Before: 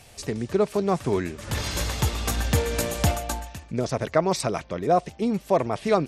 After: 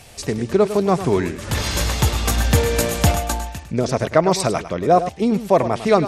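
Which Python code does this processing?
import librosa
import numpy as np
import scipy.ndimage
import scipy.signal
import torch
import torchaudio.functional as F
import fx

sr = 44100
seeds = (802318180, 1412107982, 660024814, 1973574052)

y = x + 10.0 ** (-12.0 / 20.0) * np.pad(x, (int(103 * sr / 1000.0), 0))[:len(x)]
y = y * 10.0 ** (6.0 / 20.0)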